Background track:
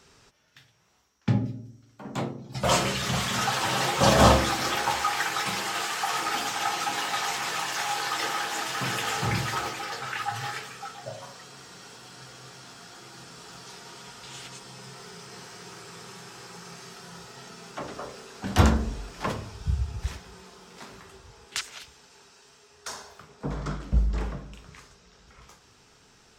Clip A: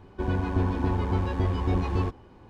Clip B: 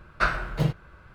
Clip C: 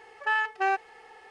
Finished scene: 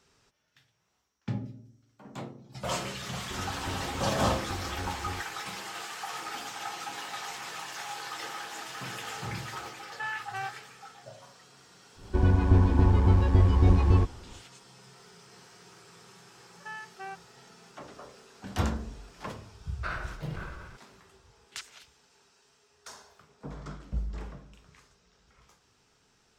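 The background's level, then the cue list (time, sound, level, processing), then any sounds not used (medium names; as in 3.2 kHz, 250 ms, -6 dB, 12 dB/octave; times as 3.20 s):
background track -9.5 dB
3.11 s: add A -13 dB
9.73 s: add C -9 dB + high-pass 680 Hz
11.95 s: add A -0.5 dB, fades 0.10 s + bass shelf 120 Hz +10 dB
16.39 s: add C -15.5 dB
19.63 s: add B -13.5 dB + decay stretcher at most 33 dB/s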